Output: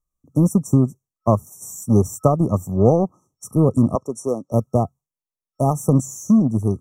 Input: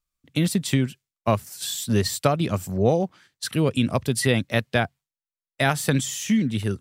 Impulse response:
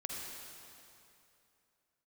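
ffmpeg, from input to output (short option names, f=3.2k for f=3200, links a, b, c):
-filter_complex "[0:a]asettb=1/sr,asplit=3[a][b][c];[a]atrim=end=3.954[d];[b]atrim=start=3.95:end=4.52,asetpts=PTS-STARTPTS,afade=t=in:d=0.004:c=qsin,afade=t=out:st=0.566:d=0.004:c=qsin,highpass=390,lowpass=7k[e];[c]atrim=start=4.516[f];[d][e]acrossfade=d=0.004:c1=hsin:c2=qsin[g];[g][f]acrossfade=d=0.004:c1=qsin:c2=hsin,tiltshelf=f=780:g=3.5,asplit=2[h][i];[i]acrusher=bits=2:mix=0:aa=0.5,volume=-11dB[j];[h][j]amix=inputs=2:normalize=0,afftfilt=real='re*(1-between(b*sr/4096,1300,5500))':imag='im*(1-between(b*sr/4096,1300,5500))':win_size=4096:overlap=0.75,volume=1dB"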